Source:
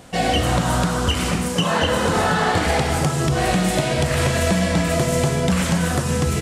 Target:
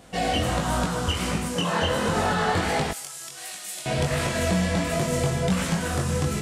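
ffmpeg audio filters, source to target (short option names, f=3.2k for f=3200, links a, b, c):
-filter_complex "[0:a]asettb=1/sr,asplit=3[a][b][c];[a]atrim=end=2.914[d];[b]atrim=start=2.91:end=3.86,asetpts=PTS-STARTPTS,afade=t=in:d=0.004:c=qsin,afade=t=out:st=0.946:d=0.004:c=qsin,aderivative[e];[c]atrim=start=3.856[f];[d][e]acrossfade=d=0.004:c1=hsin:c2=qsin[g];[g][f]acrossfade=d=0.004:c1=qsin:c2=hsin,flanger=delay=19:depth=4:speed=1.4,volume=-2dB"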